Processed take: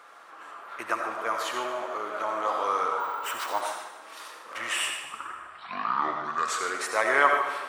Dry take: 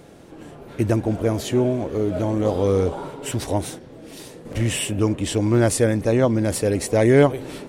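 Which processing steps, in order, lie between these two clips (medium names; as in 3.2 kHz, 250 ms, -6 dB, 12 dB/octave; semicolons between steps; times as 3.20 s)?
4.90 s: tape start 2.00 s; resonant high-pass 1.2 kHz, resonance Q 4.9; treble shelf 3.2 kHz -8.5 dB; multi-head delay 75 ms, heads first and second, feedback 53%, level -14.5 dB; reverberation RT60 0.75 s, pre-delay 45 ms, DRR 4 dB; 3.00–3.61 s: careless resampling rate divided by 2×, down filtered, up hold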